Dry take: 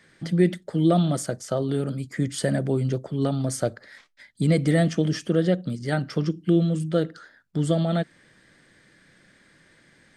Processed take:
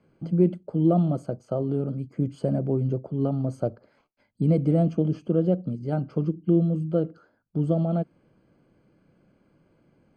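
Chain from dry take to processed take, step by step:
harmonic generator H 3 −33 dB, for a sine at −8.5 dBFS
moving average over 24 samples

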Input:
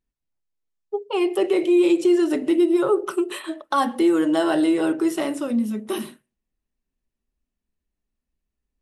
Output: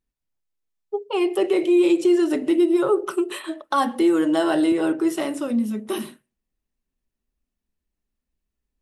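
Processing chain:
0:04.72–0:05.34: multiband upward and downward expander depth 40%

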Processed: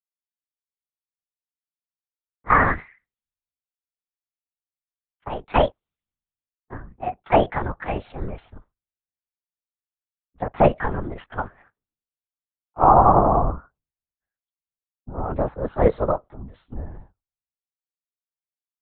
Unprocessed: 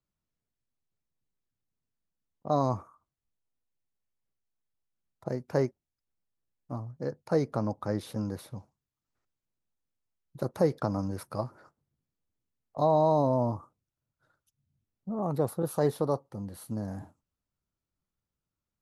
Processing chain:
pitch glide at a constant tempo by +11 semitones ending unshifted
low-shelf EQ 360 Hz −6.5 dB
in parallel at 0 dB: downward compressor, threshold −39 dBFS, peak gain reduction 16 dB
on the sum: linear-prediction vocoder at 8 kHz whisper
multiband upward and downward expander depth 100%
level +6 dB

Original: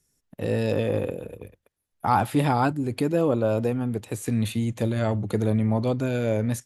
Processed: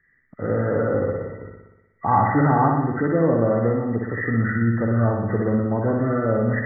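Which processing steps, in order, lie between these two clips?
hearing-aid frequency compression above 1,100 Hz 4 to 1
flutter between parallel walls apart 10.4 metres, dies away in 0.97 s
level +1.5 dB

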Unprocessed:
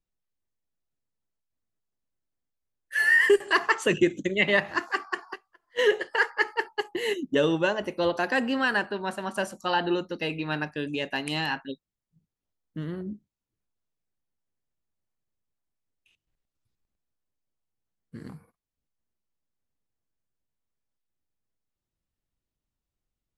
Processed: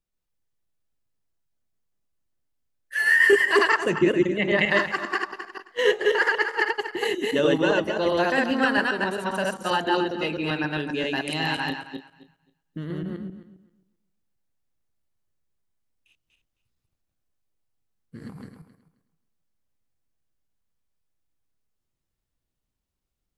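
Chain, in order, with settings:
feedback delay that plays each chunk backwards 133 ms, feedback 41%, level 0 dB
0:03.77–0:04.59: high-shelf EQ 2,700 Hz −10.5 dB

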